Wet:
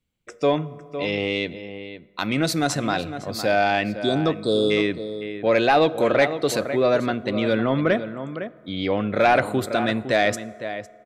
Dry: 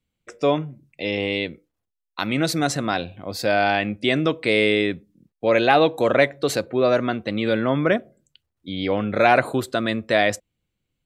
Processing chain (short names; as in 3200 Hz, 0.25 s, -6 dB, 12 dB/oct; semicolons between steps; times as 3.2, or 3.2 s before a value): spectral repair 4.01–4.68, 1400–3300 Hz before; outdoor echo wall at 87 m, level -11 dB; soft clip -7 dBFS, distortion -21 dB; on a send at -18 dB: reverb RT60 2.3 s, pre-delay 4 ms